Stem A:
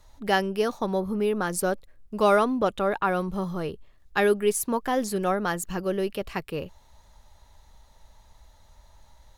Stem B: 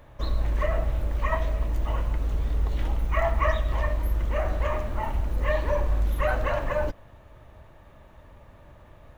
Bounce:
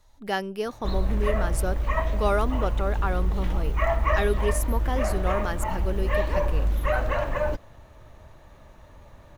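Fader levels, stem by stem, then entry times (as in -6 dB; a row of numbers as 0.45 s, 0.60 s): -4.5 dB, +0.5 dB; 0.00 s, 0.65 s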